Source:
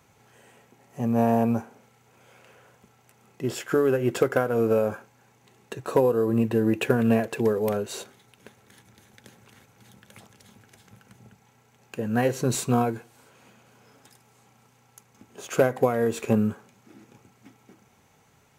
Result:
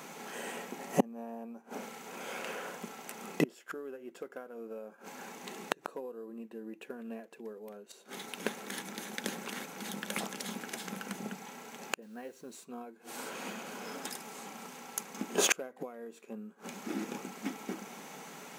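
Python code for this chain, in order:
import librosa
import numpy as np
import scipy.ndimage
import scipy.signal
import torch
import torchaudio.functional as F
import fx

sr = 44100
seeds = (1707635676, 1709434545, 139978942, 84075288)

y = fx.gate_flip(x, sr, shuts_db=-26.0, range_db=-36)
y = fx.brickwall_highpass(y, sr, low_hz=160.0)
y = fx.quant_companded(y, sr, bits=8, at=(12.02, 12.65))
y = y * librosa.db_to_amplitude(14.5)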